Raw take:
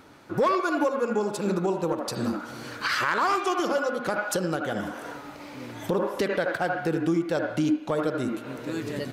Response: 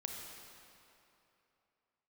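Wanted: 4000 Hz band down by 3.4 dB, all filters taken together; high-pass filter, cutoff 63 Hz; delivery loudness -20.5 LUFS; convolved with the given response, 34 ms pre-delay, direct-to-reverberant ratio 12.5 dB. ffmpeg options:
-filter_complex "[0:a]highpass=63,equalizer=f=4k:t=o:g=-4.5,asplit=2[a][b];[1:a]atrim=start_sample=2205,adelay=34[c];[b][c]afir=irnorm=-1:irlink=0,volume=-11.5dB[d];[a][d]amix=inputs=2:normalize=0,volume=6.5dB"

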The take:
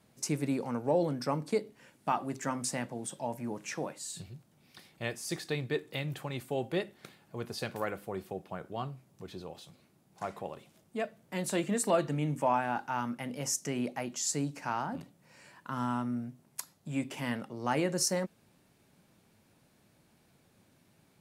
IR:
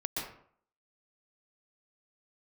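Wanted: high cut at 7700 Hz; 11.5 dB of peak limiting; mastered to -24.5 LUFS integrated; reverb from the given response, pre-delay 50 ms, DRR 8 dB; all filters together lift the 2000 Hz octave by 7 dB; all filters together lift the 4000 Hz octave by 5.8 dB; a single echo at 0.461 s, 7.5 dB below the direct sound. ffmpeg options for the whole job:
-filter_complex "[0:a]lowpass=7.7k,equalizer=f=2k:t=o:g=7,equalizer=f=4k:t=o:g=6.5,alimiter=level_in=1dB:limit=-24dB:level=0:latency=1,volume=-1dB,aecho=1:1:461:0.422,asplit=2[a][b];[1:a]atrim=start_sample=2205,adelay=50[c];[b][c]afir=irnorm=-1:irlink=0,volume=-12dB[d];[a][d]amix=inputs=2:normalize=0,volume=11.5dB"

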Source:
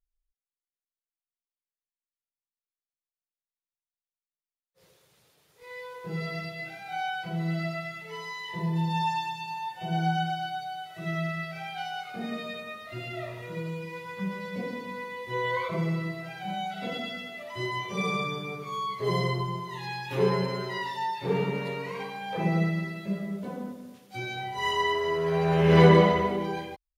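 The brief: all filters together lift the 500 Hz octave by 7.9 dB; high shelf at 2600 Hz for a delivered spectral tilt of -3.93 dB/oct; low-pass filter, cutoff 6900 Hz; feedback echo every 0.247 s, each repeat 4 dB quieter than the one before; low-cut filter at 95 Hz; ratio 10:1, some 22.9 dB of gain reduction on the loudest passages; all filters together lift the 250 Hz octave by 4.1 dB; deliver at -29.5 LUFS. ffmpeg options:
-af "highpass=95,lowpass=6.9k,equalizer=f=250:t=o:g=6,equalizer=f=500:t=o:g=7.5,highshelf=f=2.6k:g=3.5,acompressor=threshold=-31dB:ratio=10,aecho=1:1:247|494|741|988|1235|1482|1729|1976|2223:0.631|0.398|0.25|0.158|0.0994|0.0626|0.0394|0.0249|0.0157,volume=3dB"

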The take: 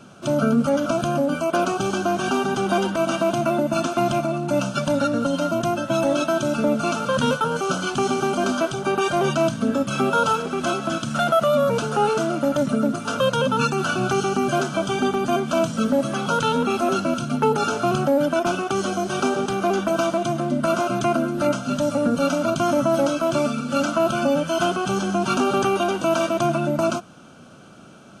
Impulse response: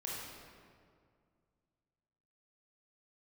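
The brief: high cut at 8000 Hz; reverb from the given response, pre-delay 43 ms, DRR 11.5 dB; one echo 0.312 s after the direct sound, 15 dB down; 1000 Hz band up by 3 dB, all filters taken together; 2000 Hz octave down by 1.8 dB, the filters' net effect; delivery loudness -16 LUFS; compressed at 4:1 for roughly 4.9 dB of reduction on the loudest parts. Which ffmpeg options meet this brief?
-filter_complex "[0:a]lowpass=8k,equalizer=f=1k:t=o:g=6.5,equalizer=f=2k:t=o:g=-7,acompressor=threshold=-19dB:ratio=4,aecho=1:1:312:0.178,asplit=2[a][b];[1:a]atrim=start_sample=2205,adelay=43[c];[b][c]afir=irnorm=-1:irlink=0,volume=-12.5dB[d];[a][d]amix=inputs=2:normalize=0,volume=7dB"

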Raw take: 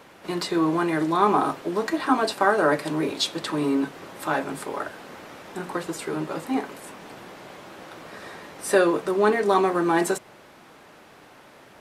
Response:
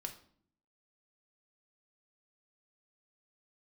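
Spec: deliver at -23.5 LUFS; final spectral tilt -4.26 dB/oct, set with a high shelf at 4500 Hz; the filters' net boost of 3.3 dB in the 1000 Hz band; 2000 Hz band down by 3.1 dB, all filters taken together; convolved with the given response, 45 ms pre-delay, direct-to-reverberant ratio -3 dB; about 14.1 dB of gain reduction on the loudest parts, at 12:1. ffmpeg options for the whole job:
-filter_complex "[0:a]equalizer=f=1k:t=o:g=6,equalizer=f=2k:t=o:g=-6,highshelf=f=4.5k:g=-9,acompressor=threshold=-27dB:ratio=12,asplit=2[a][b];[1:a]atrim=start_sample=2205,adelay=45[c];[b][c]afir=irnorm=-1:irlink=0,volume=5.5dB[d];[a][d]amix=inputs=2:normalize=0,volume=5dB"

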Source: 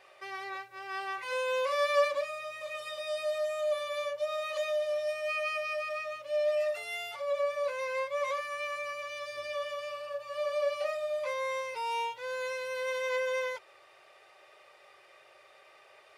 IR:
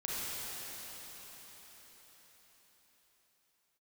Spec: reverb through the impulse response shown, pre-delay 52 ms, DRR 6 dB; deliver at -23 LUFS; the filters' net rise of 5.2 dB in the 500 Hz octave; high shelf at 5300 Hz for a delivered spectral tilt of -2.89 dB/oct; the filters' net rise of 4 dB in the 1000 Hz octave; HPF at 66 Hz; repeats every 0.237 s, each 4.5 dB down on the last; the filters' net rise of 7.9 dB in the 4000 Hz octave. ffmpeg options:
-filter_complex "[0:a]highpass=66,equalizer=f=500:t=o:g=5,equalizer=f=1k:t=o:g=3,equalizer=f=4k:t=o:g=8,highshelf=f=5.3k:g=4.5,aecho=1:1:237|474|711|948|1185|1422|1659|1896|2133:0.596|0.357|0.214|0.129|0.0772|0.0463|0.0278|0.0167|0.01,asplit=2[a][b];[1:a]atrim=start_sample=2205,adelay=52[c];[b][c]afir=irnorm=-1:irlink=0,volume=-11dB[d];[a][d]amix=inputs=2:normalize=0,volume=2.5dB"

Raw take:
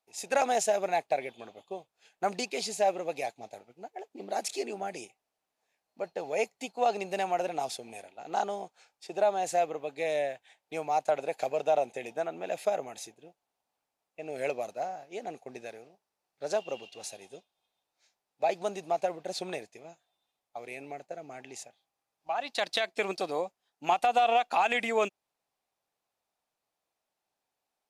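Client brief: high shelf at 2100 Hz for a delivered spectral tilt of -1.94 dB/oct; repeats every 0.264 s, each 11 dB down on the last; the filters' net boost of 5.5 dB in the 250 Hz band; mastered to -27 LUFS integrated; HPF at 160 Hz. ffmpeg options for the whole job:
-af "highpass=160,equalizer=f=250:t=o:g=8,highshelf=f=2.1k:g=7,aecho=1:1:264|528|792:0.282|0.0789|0.0221,volume=2.5dB"

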